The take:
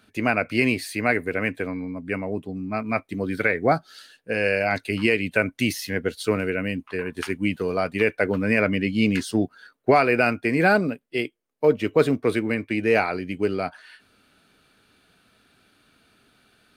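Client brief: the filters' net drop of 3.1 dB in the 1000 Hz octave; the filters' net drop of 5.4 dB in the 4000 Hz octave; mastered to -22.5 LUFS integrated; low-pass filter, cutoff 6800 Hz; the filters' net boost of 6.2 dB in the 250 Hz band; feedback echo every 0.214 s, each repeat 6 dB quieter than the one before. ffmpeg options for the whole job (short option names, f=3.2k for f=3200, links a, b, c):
-af "lowpass=6.8k,equalizer=f=250:t=o:g=8,equalizer=f=1k:t=o:g=-5.5,equalizer=f=4k:t=o:g=-7.5,aecho=1:1:214|428|642|856|1070|1284:0.501|0.251|0.125|0.0626|0.0313|0.0157,volume=-2dB"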